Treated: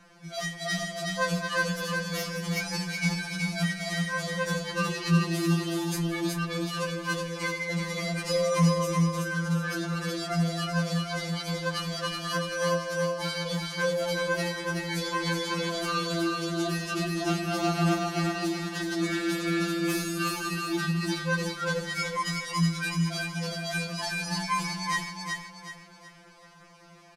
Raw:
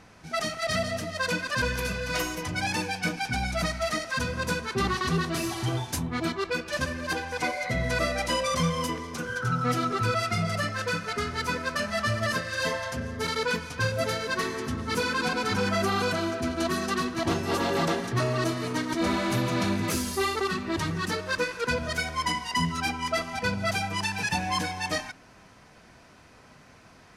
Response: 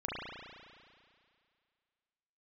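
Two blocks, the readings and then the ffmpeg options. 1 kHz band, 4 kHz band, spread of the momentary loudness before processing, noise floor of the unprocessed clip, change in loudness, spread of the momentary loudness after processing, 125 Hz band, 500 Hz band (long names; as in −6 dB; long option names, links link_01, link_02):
−3.0 dB, −0.5 dB, 4 LU, −53 dBFS, −0.5 dB, 5 LU, +1.5 dB, −1.0 dB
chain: -af "aecho=1:1:372|744|1116|1488|1860:0.708|0.255|0.0917|0.033|0.0119,afftfilt=real='re*2.83*eq(mod(b,8),0)':imag='im*2.83*eq(mod(b,8),0)':win_size=2048:overlap=0.75"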